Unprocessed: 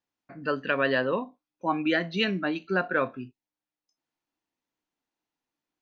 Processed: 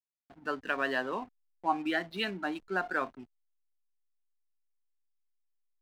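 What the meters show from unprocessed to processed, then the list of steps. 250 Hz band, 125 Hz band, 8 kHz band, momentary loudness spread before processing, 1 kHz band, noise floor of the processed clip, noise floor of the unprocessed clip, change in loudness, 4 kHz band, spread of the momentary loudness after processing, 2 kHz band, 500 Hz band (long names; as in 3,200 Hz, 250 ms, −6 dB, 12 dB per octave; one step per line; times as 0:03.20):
−8.0 dB, −13.0 dB, can't be measured, 11 LU, −2.0 dB, −77 dBFS, below −85 dBFS, −6.0 dB, −6.0 dB, 10 LU, −5.0 dB, −8.5 dB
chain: loudspeaker in its box 280–5,000 Hz, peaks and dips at 520 Hz −10 dB, 790 Hz +7 dB, 2,500 Hz −4 dB
slack as between gear wheels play −40.5 dBFS
level −4 dB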